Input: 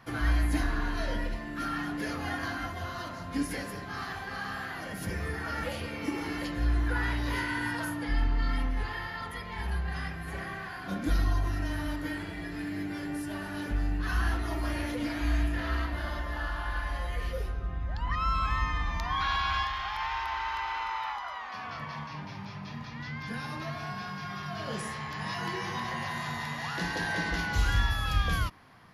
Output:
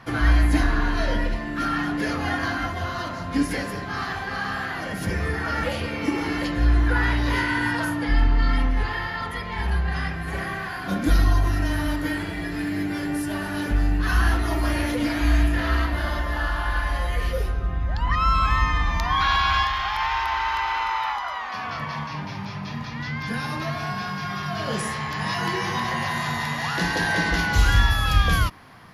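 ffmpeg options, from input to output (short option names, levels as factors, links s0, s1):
-af "asetnsamples=n=441:p=0,asendcmd='10.33 highshelf g 3',highshelf=f=11000:g=-10.5,volume=2.66"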